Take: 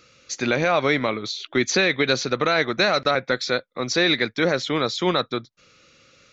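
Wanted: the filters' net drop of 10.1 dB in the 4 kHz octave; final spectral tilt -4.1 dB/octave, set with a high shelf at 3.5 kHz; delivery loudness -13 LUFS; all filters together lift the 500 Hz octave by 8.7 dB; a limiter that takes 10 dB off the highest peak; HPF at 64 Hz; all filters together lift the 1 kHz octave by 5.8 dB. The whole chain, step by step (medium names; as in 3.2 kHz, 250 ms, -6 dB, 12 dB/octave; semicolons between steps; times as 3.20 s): high-pass 64 Hz; peaking EQ 500 Hz +9 dB; peaking EQ 1 kHz +6.5 dB; treble shelf 3.5 kHz -6.5 dB; peaking EQ 4 kHz -7.5 dB; trim +9.5 dB; peak limiter -2.5 dBFS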